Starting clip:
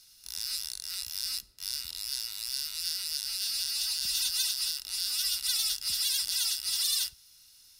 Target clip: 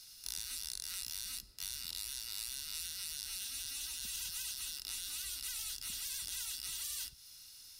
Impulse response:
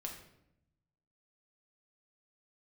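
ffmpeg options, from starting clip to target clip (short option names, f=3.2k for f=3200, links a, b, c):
-filter_complex "[0:a]acrossover=split=350[a][b];[b]acompressor=threshold=-37dB:ratio=5[c];[a][c]amix=inputs=2:normalize=0,afftfilt=real='re*lt(hypot(re,im),0.0178)':imag='im*lt(hypot(re,im),0.0178)':win_size=1024:overlap=0.75,volume=2.5dB"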